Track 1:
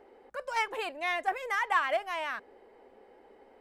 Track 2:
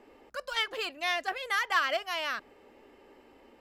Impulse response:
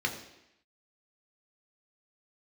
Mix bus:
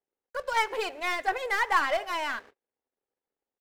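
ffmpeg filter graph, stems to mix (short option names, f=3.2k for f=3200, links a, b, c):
-filter_complex "[0:a]volume=1.5dB,asplit=2[a][b];[b]volume=-15.5dB[c];[1:a]aeval=exprs='(tanh(31.6*val(0)+0.75)-tanh(0.75))/31.6':c=same,adelay=1.7,volume=1.5dB[d];[2:a]atrim=start_sample=2205[e];[c][e]afir=irnorm=-1:irlink=0[f];[a][d][f]amix=inputs=3:normalize=0,aeval=exprs='sgn(val(0))*max(abs(val(0))-0.00158,0)':c=same,agate=range=-34dB:threshold=-47dB:ratio=16:detection=peak"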